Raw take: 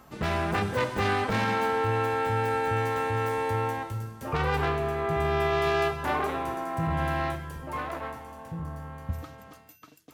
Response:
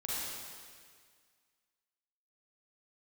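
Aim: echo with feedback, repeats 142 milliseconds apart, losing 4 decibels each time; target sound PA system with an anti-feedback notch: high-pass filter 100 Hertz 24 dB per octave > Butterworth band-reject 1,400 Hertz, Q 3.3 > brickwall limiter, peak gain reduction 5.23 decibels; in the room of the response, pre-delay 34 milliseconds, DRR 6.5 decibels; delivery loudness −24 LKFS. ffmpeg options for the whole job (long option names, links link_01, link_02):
-filter_complex "[0:a]aecho=1:1:142|284|426|568|710|852|994|1136|1278:0.631|0.398|0.25|0.158|0.0994|0.0626|0.0394|0.0249|0.0157,asplit=2[link_01][link_02];[1:a]atrim=start_sample=2205,adelay=34[link_03];[link_02][link_03]afir=irnorm=-1:irlink=0,volume=-10.5dB[link_04];[link_01][link_04]amix=inputs=2:normalize=0,highpass=frequency=100:width=0.5412,highpass=frequency=100:width=1.3066,asuperstop=centerf=1400:order=8:qfactor=3.3,volume=2.5dB,alimiter=limit=-14dB:level=0:latency=1"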